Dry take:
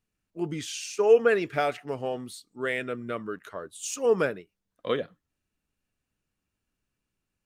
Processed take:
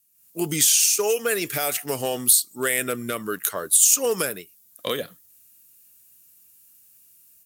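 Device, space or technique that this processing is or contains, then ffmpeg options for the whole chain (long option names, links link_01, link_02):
FM broadcast chain: -filter_complex "[0:a]highpass=71,dynaudnorm=framelen=140:gausssize=3:maxgain=11.5dB,acrossover=split=2200|6100[link_01][link_02][link_03];[link_01]acompressor=threshold=-16dB:ratio=4[link_04];[link_02]acompressor=threshold=-35dB:ratio=4[link_05];[link_03]acompressor=threshold=-39dB:ratio=4[link_06];[link_04][link_05][link_06]amix=inputs=3:normalize=0,aemphasis=mode=production:type=75fm,alimiter=limit=-10dB:level=0:latency=1:release=203,asoftclip=type=hard:threshold=-11.5dB,lowpass=frequency=15000:width=0.5412,lowpass=frequency=15000:width=1.3066,aemphasis=mode=production:type=75fm,volume=-3.5dB"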